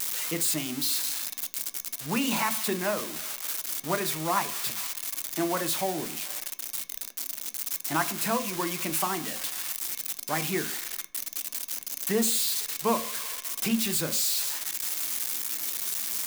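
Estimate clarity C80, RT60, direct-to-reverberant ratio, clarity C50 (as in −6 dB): 19.5 dB, 0.45 s, 7.5 dB, 16.0 dB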